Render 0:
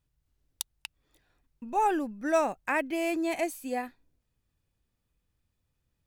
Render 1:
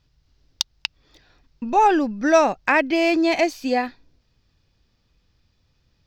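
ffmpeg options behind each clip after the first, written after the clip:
-filter_complex "[0:a]highshelf=f=7k:t=q:w=3:g=-12.5,asplit=2[a][b];[b]acompressor=threshold=-34dB:ratio=6,volume=-2.5dB[c];[a][c]amix=inputs=2:normalize=0,volume=8dB"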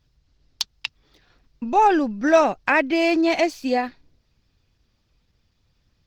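-ar 48000 -c:a libopus -b:a 16k

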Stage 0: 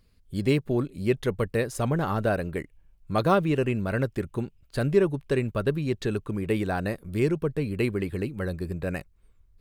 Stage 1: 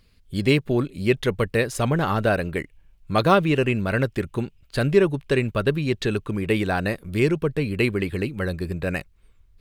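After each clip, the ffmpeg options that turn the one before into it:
-af "equalizer=f=2.9k:t=o:w=1.8:g=6,volume=3.5dB"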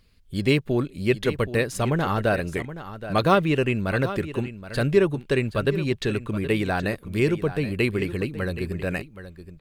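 -af "aecho=1:1:773:0.224,volume=-1.5dB"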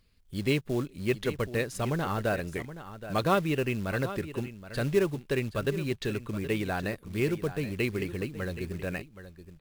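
-af "acrusher=bits=5:mode=log:mix=0:aa=0.000001,volume=-6.5dB"

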